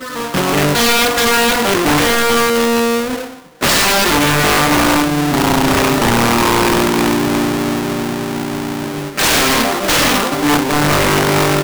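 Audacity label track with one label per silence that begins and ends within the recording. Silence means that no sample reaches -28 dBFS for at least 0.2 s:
3.340000	3.610000	silence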